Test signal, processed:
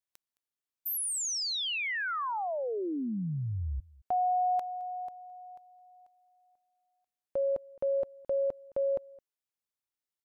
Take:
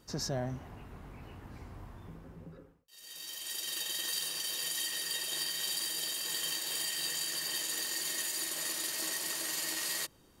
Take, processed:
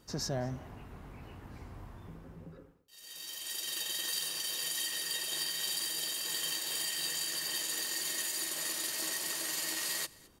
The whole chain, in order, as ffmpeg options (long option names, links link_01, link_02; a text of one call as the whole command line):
ffmpeg -i in.wav -af "aecho=1:1:215:0.0708" out.wav